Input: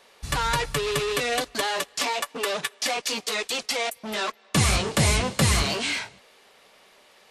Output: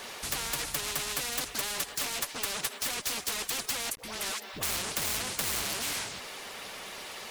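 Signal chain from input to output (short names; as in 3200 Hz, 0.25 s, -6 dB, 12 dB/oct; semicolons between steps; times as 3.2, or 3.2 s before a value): bin magnitudes rounded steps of 15 dB; soft clip -23 dBFS, distortion -10 dB; 3.95–4.63 dispersion highs, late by 85 ms, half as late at 580 Hz; requantised 12-bit, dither none; spectral compressor 4:1; gain +3 dB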